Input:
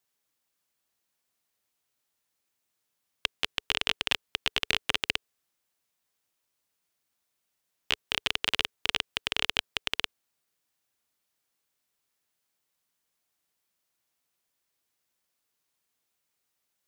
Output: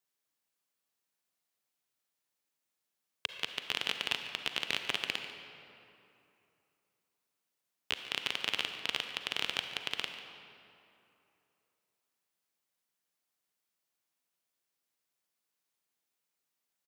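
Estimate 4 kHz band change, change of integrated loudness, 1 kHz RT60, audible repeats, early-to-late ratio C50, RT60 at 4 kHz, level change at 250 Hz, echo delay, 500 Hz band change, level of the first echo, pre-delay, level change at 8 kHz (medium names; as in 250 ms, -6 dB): -5.5 dB, -5.5 dB, 2.8 s, 1, 6.5 dB, 1.7 s, -5.0 dB, 144 ms, -5.0 dB, -16.0 dB, 37 ms, -5.5 dB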